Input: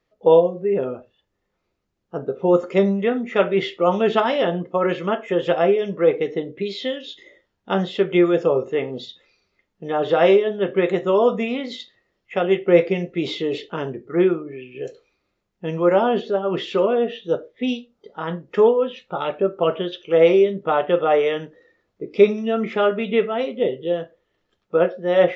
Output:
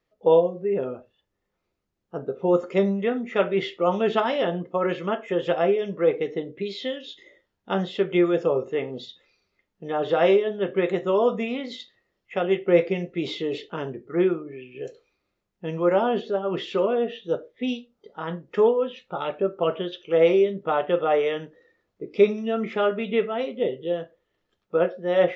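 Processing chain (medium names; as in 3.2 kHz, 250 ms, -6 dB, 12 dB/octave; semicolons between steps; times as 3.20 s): trim -4 dB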